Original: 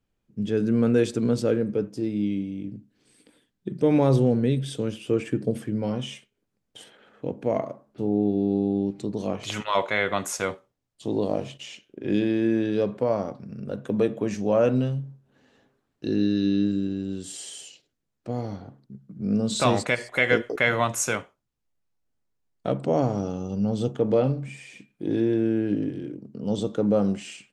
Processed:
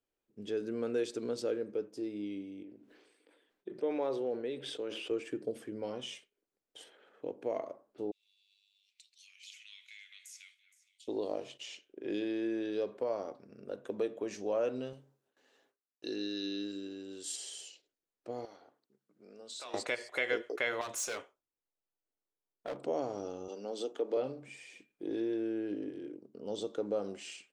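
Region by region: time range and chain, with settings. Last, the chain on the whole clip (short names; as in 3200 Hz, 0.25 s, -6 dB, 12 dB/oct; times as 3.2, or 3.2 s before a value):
2.63–5.11 tone controls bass -12 dB, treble -12 dB + sustainer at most 52 dB/s
8.11–11.08 elliptic high-pass 2300 Hz, stop band 70 dB + compressor 5:1, threshold -43 dBFS + echo with dull and thin repeats by turns 0.234 s, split 2400 Hz, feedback 56%, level -11 dB
14.93–17.36 gate with hold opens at -52 dBFS, closes at -57 dBFS + tilt +2 dB/oct
18.45–19.74 HPF 1000 Hz 6 dB/oct + compressor 3:1, threshold -40 dBFS
20.81–22.77 hard clip -26 dBFS + mismatched tape noise reduction decoder only
23.48–24.17 HPF 250 Hz 24 dB/oct + mismatched tape noise reduction encoder only
whole clip: resonant low shelf 250 Hz -12 dB, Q 1.5; compressor 1.5:1, threshold -28 dBFS; dynamic EQ 4600 Hz, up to +5 dB, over -49 dBFS, Q 0.97; gain -8.5 dB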